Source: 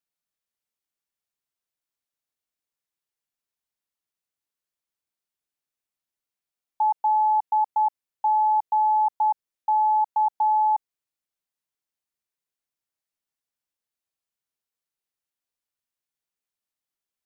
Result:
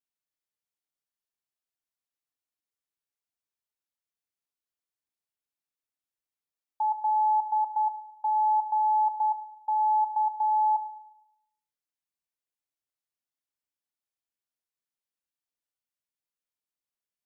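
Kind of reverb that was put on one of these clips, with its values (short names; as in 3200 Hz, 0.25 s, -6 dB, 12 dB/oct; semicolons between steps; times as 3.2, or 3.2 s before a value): FDN reverb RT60 0.85 s, low-frequency decay 0.8×, high-frequency decay 0.85×, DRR 9 dB; gain -6.5 dB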